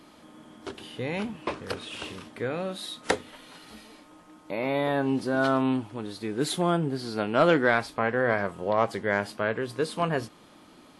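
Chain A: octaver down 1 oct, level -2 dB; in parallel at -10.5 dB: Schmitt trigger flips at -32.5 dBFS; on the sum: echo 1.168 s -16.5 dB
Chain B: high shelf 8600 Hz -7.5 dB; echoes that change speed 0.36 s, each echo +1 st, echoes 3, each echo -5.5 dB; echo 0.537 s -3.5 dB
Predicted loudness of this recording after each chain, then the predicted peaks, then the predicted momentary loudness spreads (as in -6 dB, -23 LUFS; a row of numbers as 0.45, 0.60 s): -26.0, -25.5 LUFS; -9.5, -8.0 dBFS; 20, 12 LU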